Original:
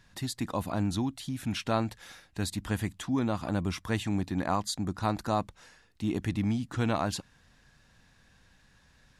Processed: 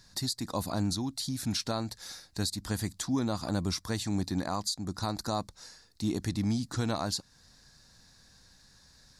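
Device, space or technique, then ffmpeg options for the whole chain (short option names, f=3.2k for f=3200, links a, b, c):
over-bright horn tweeter: -af "highshelf=f=3.6k:t=q:w=3:g=7,alimiter=limit=-20.5dB:level=0:latency=1:release=294"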